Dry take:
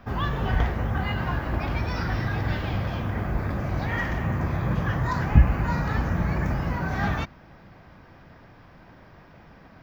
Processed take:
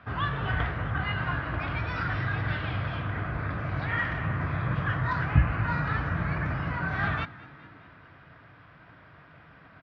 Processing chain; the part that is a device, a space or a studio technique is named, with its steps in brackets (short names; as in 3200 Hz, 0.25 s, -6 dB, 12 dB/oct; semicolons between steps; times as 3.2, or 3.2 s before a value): frequency-shifting delay pedal into a guitar cabinet (frequency-shifting echo 0.208 s, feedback 62%, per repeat +42 Hz, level -20 dB; speaker cabinet 94–3800 Hz, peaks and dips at 190 Hz -5 dB, 370 Hz -8 dB, 530 Hz -6 dB, 830 Hz -7 dB, 1400 Hz +5 dB); bell 230 Hz -9 dB 0.31 oct